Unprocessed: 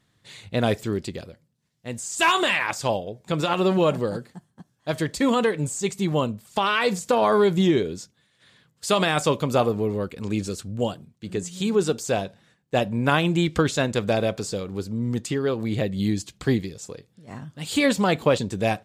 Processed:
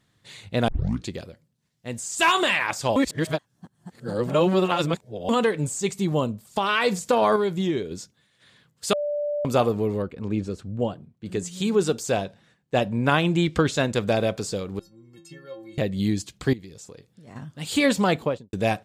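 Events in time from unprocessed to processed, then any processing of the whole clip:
0:00.68: tape start 0.41 s
0:02.96–0:05.29: reverse
0:06.02–0:06.69: parametric band 2,100 Hz −5 dB 1.8 octaves
0:07.36–0:07.91: clip gain −5.5 dB
0:08.93–0:09.45: beep over 587 Hz −23.5 dBFS
0:10.02–0:11.26: low-pass filter 1,300 Hz 6 dB per octave
0:12.17–0:13.77: high-shelf EQ 9,200 Hz −6.5 dB
0:14.79–0:15.78: stiff-string resonator 160 Hz, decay 0.6 s, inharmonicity 0.03
0:16.53–0:17.36: downward compressor 3 to 1, threshold −41 dBFS
0:18.07–0:18.53: fade out and dull

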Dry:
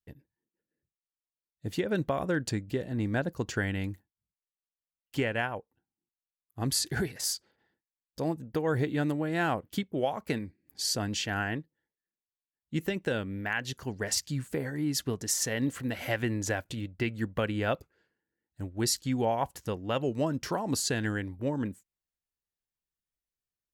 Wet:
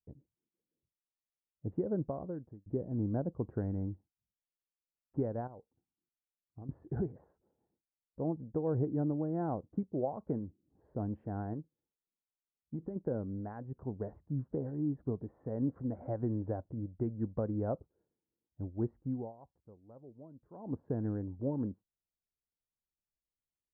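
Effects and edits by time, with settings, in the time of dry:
0:01.89–0:02.66: fade out
0:05.47–0:06.69: downward compressor, threshold −41 dBFS
0:11.53–0:12.96: downward compressor, threshold −31 dBFS
0:19.00–0:20.85: duck −19.5 dB, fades 0.33 s
whole clip: Bessel low-pass filter 610 Hz, order 6; level −2.5 dB

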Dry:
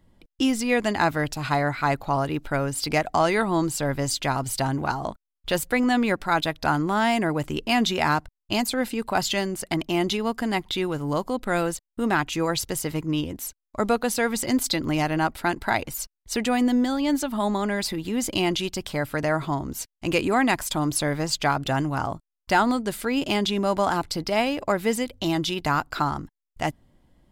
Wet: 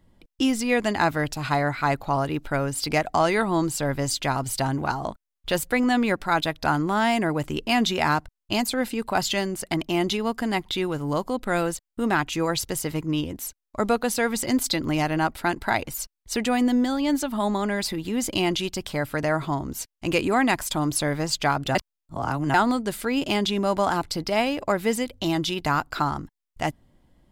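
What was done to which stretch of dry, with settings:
0:21.75–0:22.54: reverse

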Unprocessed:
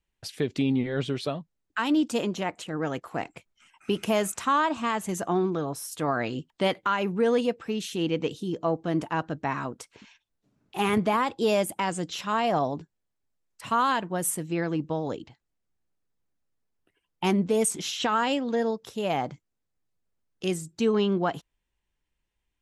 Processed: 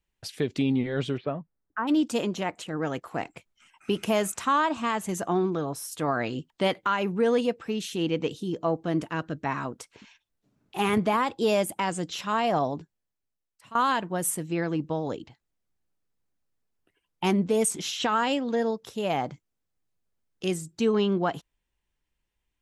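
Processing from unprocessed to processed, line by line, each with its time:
0:01.16–0:01.87: low-pass filter 2,400 Hz → 1,400 Hz 24 dB per octave
0:08.98–0:09.46: parametric band 830 Hz −9.5 dB 0.54 octaves
0:12.70–0:13.75: fade out, to −18.5 dB

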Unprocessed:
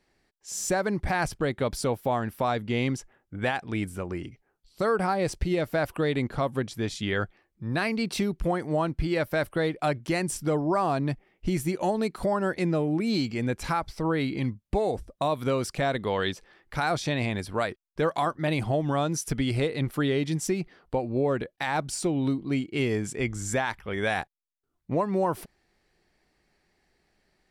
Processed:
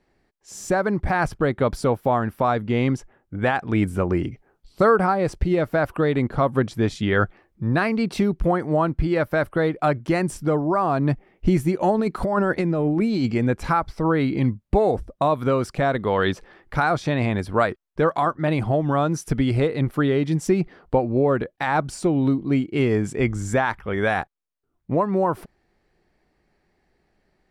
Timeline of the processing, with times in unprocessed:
0:11.99–0:13.38: compressor whose output falls as the input rises −28 dBFS
whole clip: dynamic equaliser 1,300 Hz, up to +5 dB, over −42 dBFS, Q 1.9; speech leveller 0.5 s; high-shelf EQ 2,200 Hz −11 dB; level +6.5 dB

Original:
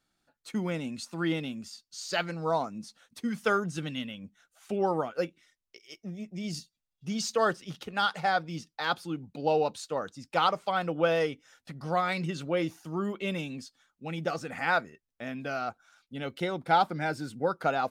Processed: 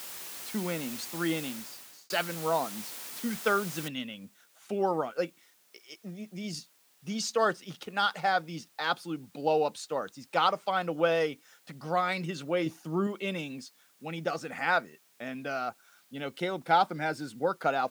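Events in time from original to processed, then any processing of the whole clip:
0:01.47–0:02.10: fade out
0:03.88: noise floor change −42 dB −65 dB
0:12.66–0:13.07: low-shelf EQ 460 Hz +6.5 dB
whole clip: Bessel high-pass filter 180 Hz

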